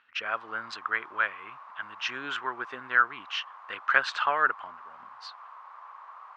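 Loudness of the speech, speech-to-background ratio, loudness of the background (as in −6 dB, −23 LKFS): −29.0 LKFS, 18.0 dB, −47.0 LKFS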